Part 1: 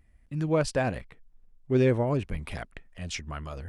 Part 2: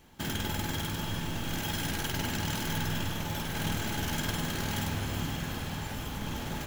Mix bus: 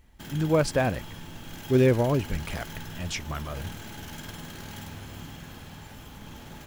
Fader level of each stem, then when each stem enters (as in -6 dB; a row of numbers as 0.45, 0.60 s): +2.5, -8.0 dB; 0.00, 0.00 s